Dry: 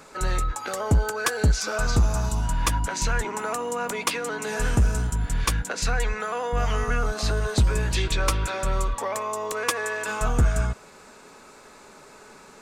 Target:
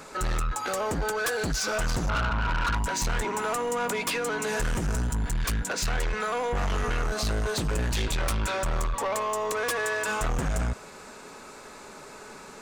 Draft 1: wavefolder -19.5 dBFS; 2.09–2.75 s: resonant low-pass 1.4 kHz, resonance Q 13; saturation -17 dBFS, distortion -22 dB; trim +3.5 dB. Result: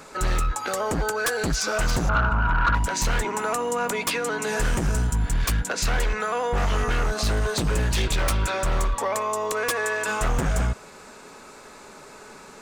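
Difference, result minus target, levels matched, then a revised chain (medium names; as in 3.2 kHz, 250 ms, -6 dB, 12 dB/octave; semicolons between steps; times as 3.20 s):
saturation: distortion -11 dB
wavefolder -19.5 dBFS; 2.09–2.75 s: resonant low-pass 1.4 kHz, resonance Q 13; saturation -27 dBFS, distortion -11 dB; trim +3.5 dB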